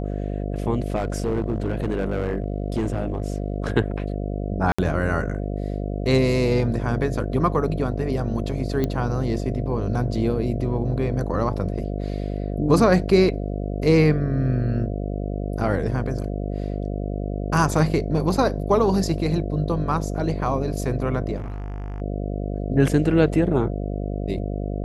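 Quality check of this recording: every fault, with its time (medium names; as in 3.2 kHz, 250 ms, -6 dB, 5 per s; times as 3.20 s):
buzz 50 Hz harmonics 14 -27 dBFS
0.95–3.56 s: clipped -18.5 dBFS
4.72–4.79 s: dropout 65 ms
8.84 s: pop -12 dBFS
21.36–22.02 s: clipped -27.5 dBFS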